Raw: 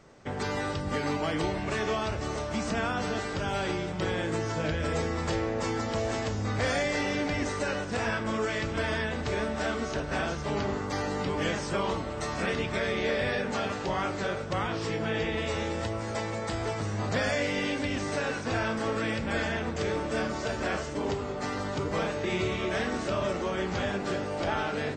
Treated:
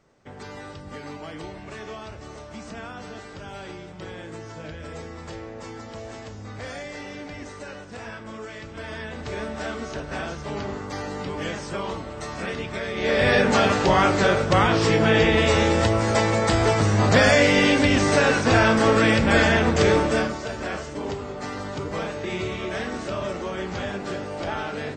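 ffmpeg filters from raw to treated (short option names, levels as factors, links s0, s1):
-af "volume=3.98,afade=t=in:st=8.72:d=0.73:silence=0.446684,afade=t=in:st=12.94:d=0.44:silence=0.237137,afade=t=out:st=19.94:d=0.44:silence=0.266073"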